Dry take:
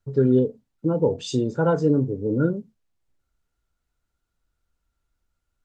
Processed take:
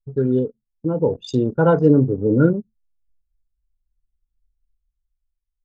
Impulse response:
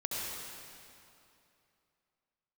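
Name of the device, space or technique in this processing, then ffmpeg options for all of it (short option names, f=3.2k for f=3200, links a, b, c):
voice memo with heavy noise removal: -af "anlmdn=39.8,dynaudnorm=f=300:g=9:m=15dB,volume=-1dB"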